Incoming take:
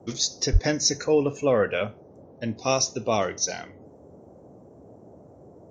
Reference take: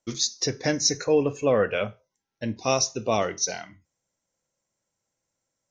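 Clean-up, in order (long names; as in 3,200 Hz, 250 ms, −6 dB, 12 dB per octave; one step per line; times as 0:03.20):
high-pass at the plosives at 0:00.52
noise reduction from a noise print 30 dB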